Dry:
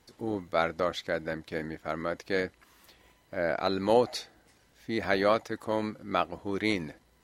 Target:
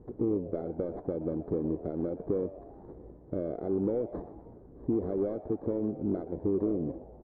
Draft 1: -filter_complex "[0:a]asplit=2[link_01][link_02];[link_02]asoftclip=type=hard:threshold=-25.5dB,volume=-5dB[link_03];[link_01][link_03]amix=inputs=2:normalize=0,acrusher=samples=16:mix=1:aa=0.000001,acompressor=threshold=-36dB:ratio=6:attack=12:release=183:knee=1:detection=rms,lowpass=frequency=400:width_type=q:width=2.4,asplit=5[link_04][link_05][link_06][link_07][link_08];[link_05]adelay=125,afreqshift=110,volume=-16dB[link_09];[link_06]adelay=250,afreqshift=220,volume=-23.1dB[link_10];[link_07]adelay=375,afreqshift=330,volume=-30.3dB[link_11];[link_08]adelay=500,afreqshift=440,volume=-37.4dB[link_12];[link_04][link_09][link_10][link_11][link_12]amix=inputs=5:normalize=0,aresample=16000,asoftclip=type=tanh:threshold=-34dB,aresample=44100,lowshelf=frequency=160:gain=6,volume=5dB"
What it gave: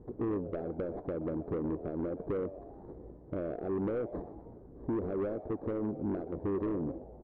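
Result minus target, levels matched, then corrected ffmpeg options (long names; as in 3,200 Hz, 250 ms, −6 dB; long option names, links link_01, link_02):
soft clipping: distortion +16 dB
-filter_complex "[0:a]asplit=2[link_01][link_02];[link_02]asoftclip=type=hard:threshold=-25.5dB,volume=-5dB[link_03];[link_01][link_03]amix=inputs=2:normalize=0,acrusher=samples=16:mix=1:aa=0.000001,acompressor=threshold=-36dB:ratio=6:attack=12:release=183:knee=1:detection=rms,lowpass=frequency=400:width_type=q:width=2.4,asplit=5[link_04][link_05][link_06][link_07][link_08];[link_05]adelay=125,afreqshift=110,volume=-16dB[link_09];[link_06]adelay=250,afreqshift=220,volume=-23.1dB[link_10];[link_07]adelay=375,afreqshift=330,volume=-30.3dB[link_11];[link_08]adelay=500,afreqshift=440,volume=-37.4dB[link_12];[link_04][link_09][link_10][link_11][link_12]amix=inputs=5:normalize=0,aresample=16000,asoftclip=type=tanh:threshold=-22.5dB,aresample=44100,lowshelf=frequency=160:gain=6,volume=5dB"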